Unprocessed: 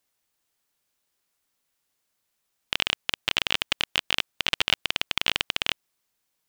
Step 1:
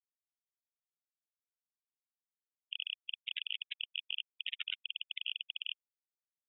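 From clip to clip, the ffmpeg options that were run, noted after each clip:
-af "afftfilt=real='re*gte(hypot(re,im),0.141)':imag='im*gte(hypot(re,im),0.141)':win_size=1024:overlap=0.75,equalizer=f=16k:t=o:w=2.9:g=-7.5,alimiter=limit=-22dB:level=0:latency=1:release=10,volume=-1dB"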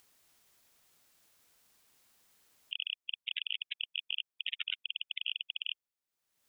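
-af "acompressor=mode=upward:threshold=-49dB:ratio=2.5,volume=2.5dB"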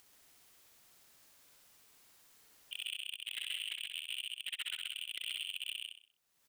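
-filter_complex "[0:a]asplit=2[a][b];[b]aecho=0:1:133:0.531[c];[a][c]amix=inputs=2:normalize=0,asoftclip=type=hard:threshold=-34dB,asplit=2[d][e];[e]aecho=0:1:63|126|189|252|315:0.596|0.226|0.086|0.0327|0.0124[f];[d][f]amix=inputs=2:normalize=0,volume=1.5dB"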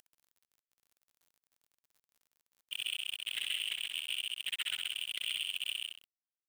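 -af "aeval=exprs='val(0)*gte(abs(val(0)),0.002)':c=same,volume=4dB"

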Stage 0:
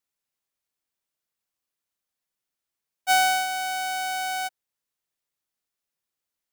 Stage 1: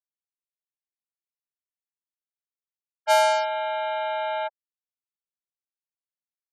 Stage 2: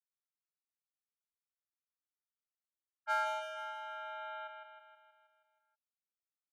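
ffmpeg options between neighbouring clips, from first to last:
-af "lowshelf=f=590:t=q:w=3:g=-7.5,afftfilt=real='re*gte(hypot(re,im),0.0708)':imag='im*gte(hypot(re,im),0.0708)':win_size=1024:overlap=0.75,aeval=exprs='val(0)*sin(2*PI*120*n/s)':c=same"
-af "bandpass=f=1.3k:t=q:w=5.4:csg=0,aemphasis=mode=production:type=bsi,aecho=1:1:159|318|477|636|795|954|1113|1272:0.531|0.303|0.172|0.0983|0.056|0.0319|0.0182|0.0104,volume=-2.5dB"

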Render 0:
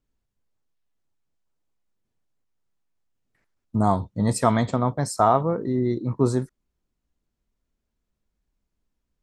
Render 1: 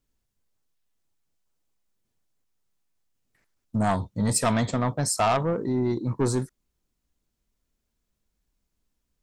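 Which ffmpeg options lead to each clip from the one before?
-af "asoftclip=type=tanh:threshold=-17dB,highshelf=f=3.4k:g=7.5"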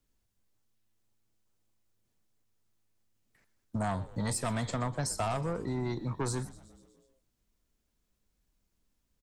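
-filter_complex "[0:a]acrossover=split=160|610[a][b][c];[a]acompressor=threshold=-36dB:ratio=4[d];[b]acompressor=threshold=-40dB:ratio=4[e];[c]acompressor=threshold=-35dB:ratio=4[f];[d][e][f]amix=inputs=3:normalize=0,asplit=7[g][h][i][j][k][l][m];[h]adelay=123,afreqshift=-110,volume=-18dB[n];[i]adelay=246,afreqshift=-220,volume=-22.2dB[o];[j]adelay=369,afreqshift=-330,volume=-26.3dB[p];[k]adelay=492,afreqshift=-440,volume=-30.5dB[q];[l]adelay=615,afreqshift=-550,volume=-34.6dB[r];[m]adelay=738,afreqshift=-660,volume=-38.8dB[s];[g][n][o][p][q][r][s]amix=inputs=7:normalize=0"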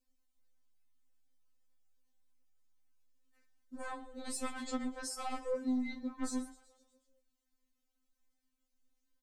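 -af "afftfilt=real='re*3.46*eq(mod(b,12),0)':imag='im*3.46*eq(mod(b,12),0)':win_size=2048:overlap=0.75,volume=-3dB"

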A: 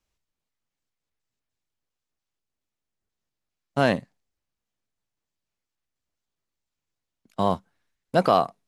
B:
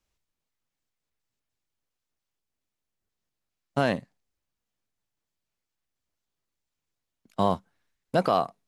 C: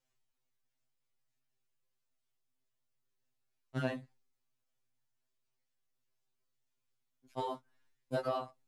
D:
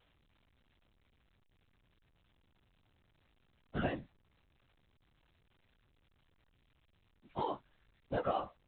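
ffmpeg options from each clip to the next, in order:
-af "alimiter=limit=-10.5dB:level=0:latency=1:release=493"
-af "acompressor=threshold=-31dB:ratio=2.5,afftfilt=real='re*2.45*eq(mod(b,6),0)':imag='im*2.45*eq(mod(b,6),0)':win_size=2048:overlap=0.75,volume=-1.5dB"
-af "afftfilt=real='hypot(re,im)*cos(2*PI*random(0))':imag='hypot(re,im)*sin(2*PI*random(1))':win_size=512:overlap=0.75,volume=6.5dB" -ar 8000 -c:a pcm_alaw

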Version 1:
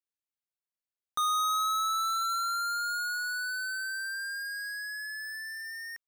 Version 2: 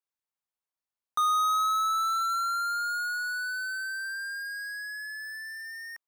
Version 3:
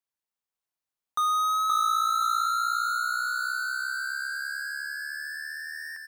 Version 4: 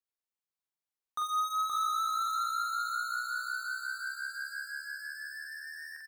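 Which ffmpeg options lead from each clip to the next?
-af "equalizer=f=1k:w=1.2:g=8,volume=-2.5dB"
-af "aecho=1:1:523|1046|1569|2092|2615:0.668|0.287|0.124|0.0531|0.0228"
-filter_complex "[0:a]asplit=2[a][b];[b]adelay=44,volume=-3.5dB[c];[a][c]amix=inputs=2:normalize=0,volume=-8dB"

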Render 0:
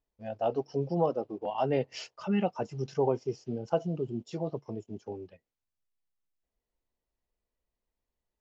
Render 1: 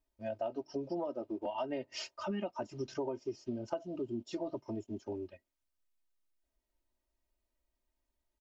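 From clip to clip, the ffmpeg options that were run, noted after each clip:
-af "aecho=1:1:3.2:0.9,acompressor=threshold=-32dB:ratio=10,volume=-1.5dB"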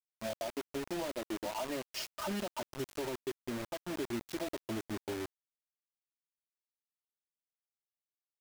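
-af "alimiter=level_in=6.5dB:limit=-24dB:level=0:latency=1:release=177,volume=-6.5dB,acrusher=bits=6:mix=0:aa=0.000001,volume=1.5dB"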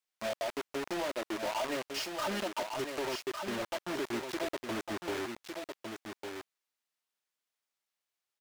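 -filter_complex "[0:a]aecho=1:1:1155:0.398,asplit=2[a][b];[b]highpass=f=720:p=1,volume=15dB,asoftclip=type=tanh:threshold=-25.5dB[c];[a][c]amix=inputs=2:normalize=0,lowpass=f=5.3k:p=1,volume=-6dB"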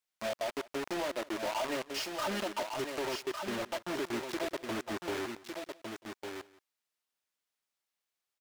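-af "aecho=1:1:176:0.1"

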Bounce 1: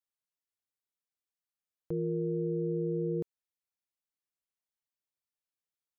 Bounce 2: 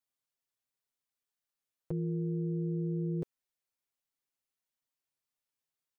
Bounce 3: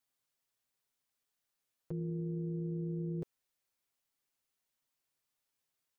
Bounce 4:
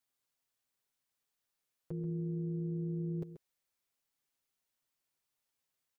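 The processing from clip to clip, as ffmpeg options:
-af "aecho=1:1:7.5:0.74"
-af "alimiter=level_in=12.5dB:limit=-24dB:level=0:latency=1:release=26,volume=-12.5dB,volume=4.5dB"
-af "aecho=1:1:134:0.282,volume=-1dB"

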